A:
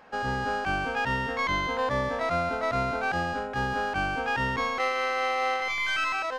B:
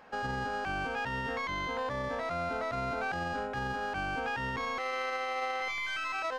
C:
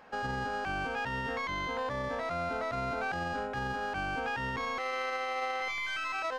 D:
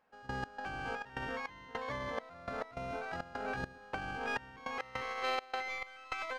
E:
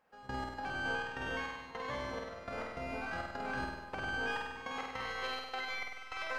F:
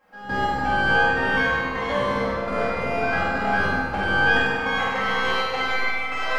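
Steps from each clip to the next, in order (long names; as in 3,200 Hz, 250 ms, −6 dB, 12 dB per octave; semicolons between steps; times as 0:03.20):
brickwall limiter −24 dBFS, peak gain reduction 8.5 dB; level −2 dB
no processing that can be heard
on a send: single-tap delay 446 ms −5 dB; on the sum: gate pattern "..x.xxx.xx..xxx" 103 BPM −24 dB; compressor whose output falls as the input rises −37 dBFS, ratio −0.5
brickwall limiter −29.5 dBFS, peak gain reduction 7 dB; on a send: flutter between parallel walls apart 8.5 metres, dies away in 1.1 s
convolution reverb RT60 2.3 s, pre-delay 4 ms, DRR −10.5 dB; level +5.5 dB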